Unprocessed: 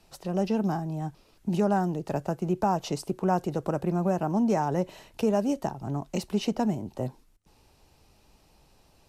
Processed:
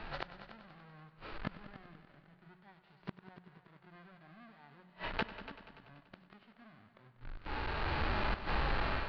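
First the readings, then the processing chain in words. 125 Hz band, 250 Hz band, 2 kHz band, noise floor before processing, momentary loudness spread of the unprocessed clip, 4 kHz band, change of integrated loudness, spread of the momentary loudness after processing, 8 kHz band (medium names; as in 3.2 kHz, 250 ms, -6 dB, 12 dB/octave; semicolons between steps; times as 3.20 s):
-13.5 dB, -21.0 dB, +2.0 dB, -62 dBFS, 9 LU, -3.5 dB, -11.0 dB, 23 LU, under -30 dB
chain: square wave that keeps the level; Chebyshev low-pass 4.5 kHz, order 5; peaking EQ 1.5 kHz +13 dB 1.7 oct; hum notches 60/120/180 Hz; level rider gain up to 15 dB; peak limiter -12 dBFS, peak gain reduction 11.5 dB; compression 1.5:1, threshold -40 dBFS, peak gain reduction 8 dB; harmonic-percussive split percussive -17 dB; inverted gate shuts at -31 dBFS, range -36 dB; multi-head delay 96 ms, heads all three, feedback 49%, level -16.5 dB; trim +10.5 dB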